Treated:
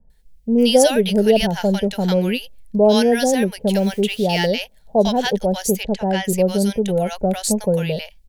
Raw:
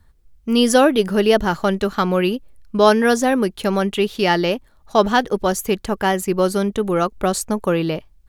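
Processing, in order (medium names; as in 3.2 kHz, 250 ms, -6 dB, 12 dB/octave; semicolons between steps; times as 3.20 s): static phaser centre 320 Hz, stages 6; 3.52–4.37 s: modulation noise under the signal 32 dB; 5.73–6.15 s: low-pass 5.1 kHz 12 dB/octave; bands offset in time lows, highs 100 ms, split 890 Hz; trim +3 dB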